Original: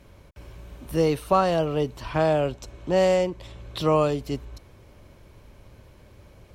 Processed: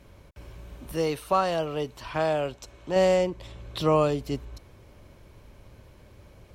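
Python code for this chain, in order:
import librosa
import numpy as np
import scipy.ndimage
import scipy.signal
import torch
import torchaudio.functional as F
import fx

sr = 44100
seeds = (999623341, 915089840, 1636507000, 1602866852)

y = fx.low_shelf(x, sr, hz=470.0, db=-7.5, at=(0.92, 2.96))
y = y * 10.0 ** (-1.0 / 20.0)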